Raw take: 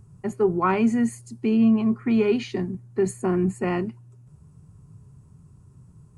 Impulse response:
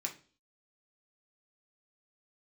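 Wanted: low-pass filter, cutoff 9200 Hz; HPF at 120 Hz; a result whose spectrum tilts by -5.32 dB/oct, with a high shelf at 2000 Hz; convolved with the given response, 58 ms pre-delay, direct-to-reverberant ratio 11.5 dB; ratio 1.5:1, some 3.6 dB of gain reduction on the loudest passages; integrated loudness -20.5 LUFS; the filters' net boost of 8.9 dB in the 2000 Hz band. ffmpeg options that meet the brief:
-filter_complex "[0:a]highpass=120,lowpass=9.2k,highshelf=f=2k:g=7.5,equalizer=f=2k:t=o:g=6.5,acompressor=threshold=-25dB:ratio=1.5,asplit=2[a][b];[1:a]atrim=start_sample=2205,adelay=58[c];[b][c]afir=irnorm=-1:irlink=0,volume=-12dB[d];[a][d]amix=inputs=2:normalize=0,volume=4.5dB"

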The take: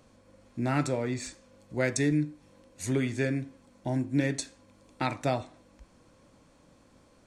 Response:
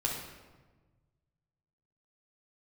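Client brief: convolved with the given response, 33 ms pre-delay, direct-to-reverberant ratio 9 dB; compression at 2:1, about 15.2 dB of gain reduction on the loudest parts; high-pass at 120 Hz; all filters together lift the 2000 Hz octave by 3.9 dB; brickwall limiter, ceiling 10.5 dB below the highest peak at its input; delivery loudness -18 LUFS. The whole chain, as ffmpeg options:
-filter_complex "[0:a]highpass=120,equalizer=f=2k:t=o:g=4.5,acompressor=threshold=-51dB:ratio=2,alimiter=level_in=12.5dB:limit=-24dB:level=0:latency=1,volume=-12.5dB,asplit=2[a][b];[1:a]atrim=start_sample=2205,adelay=33[c];[b][c]afir=irnorm=-1:irlink=0,volume=-14dB[d];[a][d]amix=inputs=2:normalize=0,volume=29.5dB"

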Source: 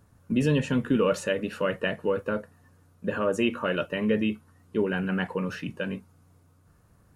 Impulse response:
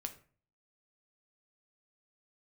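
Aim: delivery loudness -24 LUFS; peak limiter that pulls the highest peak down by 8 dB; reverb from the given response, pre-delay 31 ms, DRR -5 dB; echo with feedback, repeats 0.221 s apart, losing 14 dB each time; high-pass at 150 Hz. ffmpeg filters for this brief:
-filter_complex "[0:a]highpass=150,alimiter=limit=-20.5dB:level=0:latency=1,aecho=1:1:221|442:0.2|0.0399,asplit=2[a][b];[1:a]atrim=start_sample=2205,adelay=31[c];[b][c]afir=irnorm=-1:irlink=0,volume=7dB[d];[a][d]amix=inputs=2:normalize=0,volume=1dB"

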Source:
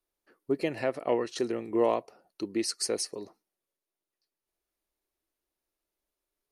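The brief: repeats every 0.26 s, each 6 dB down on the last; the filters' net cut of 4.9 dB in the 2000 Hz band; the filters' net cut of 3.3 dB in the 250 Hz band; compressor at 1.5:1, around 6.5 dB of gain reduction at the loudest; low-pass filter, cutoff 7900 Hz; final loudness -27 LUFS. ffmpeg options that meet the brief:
-af "lowpass=7.9k,equalizer=f=250:t=o:g=-5,equalizer=f=2k:t=o:g=-6,acompressor=threshold=-40dB:ratio=1.5,aecho=1:1:260|520|780|1040|1300|1560:0.501|0.251|0.125|0.0626|0.0313|0.0157,volume=10dB"

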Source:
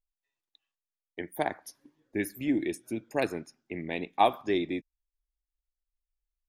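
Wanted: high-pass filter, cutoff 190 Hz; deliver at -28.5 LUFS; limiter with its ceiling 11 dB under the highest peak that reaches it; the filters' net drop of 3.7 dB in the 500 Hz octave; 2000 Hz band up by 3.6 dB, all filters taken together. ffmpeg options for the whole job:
-af "highpass=190,equalizer=f=500:t=o:g=-5.5,equalizer=f=2k:t=o:g=4.5,volume=8dB,alimiter=limit=-13.5dB:level=0:latency=1"

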